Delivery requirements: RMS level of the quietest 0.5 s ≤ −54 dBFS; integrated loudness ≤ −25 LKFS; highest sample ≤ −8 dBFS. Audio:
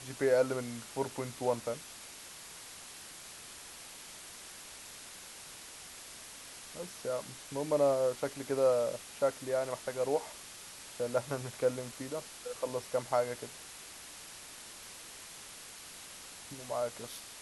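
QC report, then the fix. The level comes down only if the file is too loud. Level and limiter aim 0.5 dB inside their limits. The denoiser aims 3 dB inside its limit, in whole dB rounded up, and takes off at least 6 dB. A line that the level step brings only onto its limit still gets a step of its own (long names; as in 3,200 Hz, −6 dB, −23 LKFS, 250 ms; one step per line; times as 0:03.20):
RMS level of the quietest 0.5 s −49 dBFS: out of spec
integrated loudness −37.0 LKFS: in spec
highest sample −16.0 dBFS: in spec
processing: broadband denoise 8 dB, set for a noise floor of −49 dBFS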